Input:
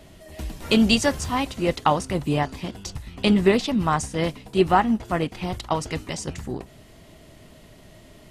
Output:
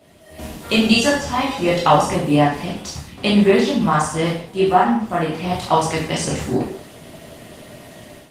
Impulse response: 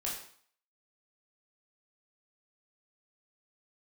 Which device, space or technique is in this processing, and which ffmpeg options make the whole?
far-field microphone of a smart speaker: -filter_complex "[0:a]asettb=1/sr,asplit=3[s0][s1][s2];[s0]atrim=end=1.054[s3];[s1]atrim=start=1.05:end=1.54,asetpts=PTS-STARTPTS,afade=t=in:d=0.004:c=qsin,afade=t=out:st=0.486:d=0.004:c=qsin,acrossover=split=6200[s4][s5];[s5]acompressor=threshold=0.00355:ratio=4:attack=1:release=60[s6];[s4][s6]amix=inputs=2:normalize=0[s7];[s2]atrim=start=1.536[s8];[s3][s7]acrossfade=d=0.004:c1=hsin:c2=qsin[s9];[s9][s8]acrossfade=d=0.004:c1=qsin:c2=hsin[s10];[1:a]atrim=start_sample=2205[s11];[s10][s11]afir=irnorm=-1:irlink=0,highpass=120,dynaudnorm=f=240:g=3:m=3.76,volume=0.891" -ar 48000 -c:a libopus -b:a 24k

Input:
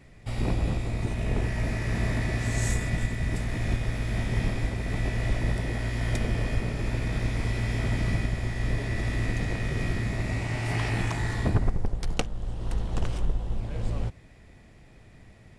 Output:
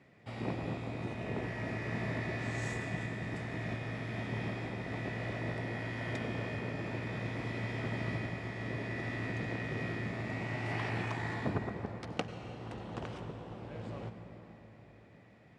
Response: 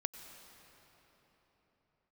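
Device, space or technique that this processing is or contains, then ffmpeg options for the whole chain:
swimming-pool hall: -filter_complex "[0:a]highpass=62,highpass=140,aemphasis=mode=reproduction:type=50fm,lowshelf=f=380:g=-3[s0];[1:a]atrim=start_sample=2205[s1];[s0][s1]afir=irnorm=-1:irlink=0,highshelf=f=5800:g=-6.5,volume=0.708"

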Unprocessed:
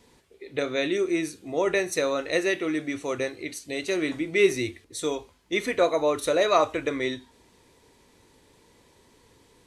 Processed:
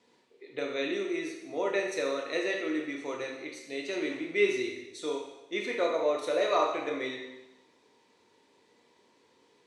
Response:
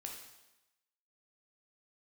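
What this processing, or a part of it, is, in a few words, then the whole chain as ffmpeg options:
supermarket ceiling speaker: -filter_complex "[0:a]highpass=230,lowpass=5800[s0];[1:a]atrim=start_sample=2205[s1];[s0][s1]afir=irnorm=-1:irlink=0,volume=0.794"

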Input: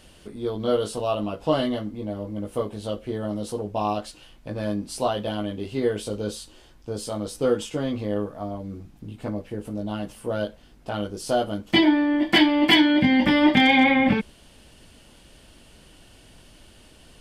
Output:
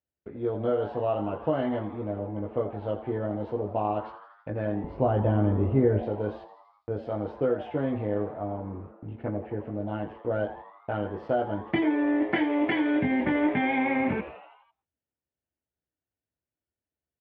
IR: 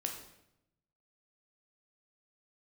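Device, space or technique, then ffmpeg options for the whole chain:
bass amplifier: -filter_complex "[0:a]acompressor=threshold=0.0891:ratio=5,highpass=f=65:w=0.5412,highpass=f=65:w=1.3066,equalizer=f=71:t=q:w=4:g=5,equalizer=f=210:t=q:w=4:g=-6,equalizer=f=1100:t=q:w=4:g=-6,lowpass=f=2100:w=0.5412,lowpass=f=2100:w=1.3066,asettb=1/sr,asplit=3[s0][s1][s2];[s0]atrim=end=4.844[s3];[s1]atrim=start=4.84:end=6.03,asetpts=PTS-STARTPTS,afade=t=in:d=0.004:c=qsin,afade=t=out:st=1.186:d=0.004:c=qsin,aemphasis=mode=reproduction:type=riaa[s4];[s2]atrim=start=6.026[s5];[s3][s4]acrossfade=d=0.004:c1=hsin:c2=qsin[s6];[s6][s5]acrossfade=d=0.004:c1=qsin:c2=hsin,agate=range=0.00891:threshold=0.00562:ratio=16:detection=peak,asplit=7[s7][s8][s9][s10][s11][s12][s13];[s8]adelay=83,afreqshift=120,volume=0.2[s14];[s9]adelay=166,afreqshift=240,volume=0.12[s15];[s10]adelay=249,afreqshift=360,volume=0.0716[s16];[s11]adelay=332,afreqshift=480,volume=0.0432[s17];[s12]adelay=415,afreqshift=600,volume=0.026[s18];[s13]adelay=498,afreqshift=720,volume=0.0155[s19];[s7][s14][s15][s16][s17][s18][s19]amix=inputs=7:normalize=0"

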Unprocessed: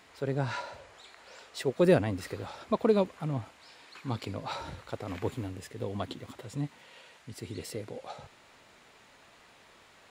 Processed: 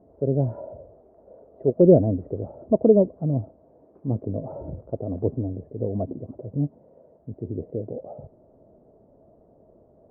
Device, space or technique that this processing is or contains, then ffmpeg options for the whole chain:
under water: -af "lowpass=f=510:w=0.5412,lowpass=f=510:w=1.3066,equalizer=f=640:t=o:w=0.26:g=11,volume=2.82"

